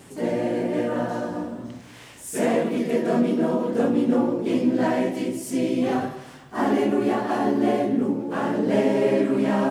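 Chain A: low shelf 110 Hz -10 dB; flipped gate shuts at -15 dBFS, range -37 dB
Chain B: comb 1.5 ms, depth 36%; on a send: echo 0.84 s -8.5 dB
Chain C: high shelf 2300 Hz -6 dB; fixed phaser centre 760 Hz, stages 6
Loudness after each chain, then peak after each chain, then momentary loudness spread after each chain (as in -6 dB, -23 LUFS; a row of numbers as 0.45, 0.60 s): -32.0, -24.0, -27.5 LUFS; -13.5, -6.5, -12.0 dBFS; 16, 9, 10 LU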